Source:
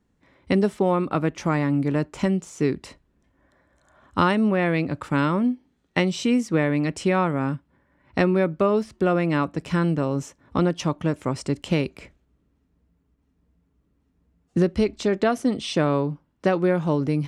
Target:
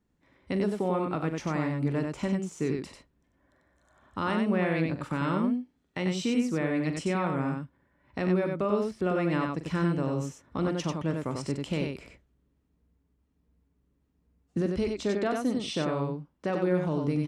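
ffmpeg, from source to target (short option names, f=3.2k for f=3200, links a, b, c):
-af "alimiter=limit=-13dB:level=0:latency=1:release=92,aecho=1:1:43.73|93.29:0.282|0.631,volume=-6.5dB"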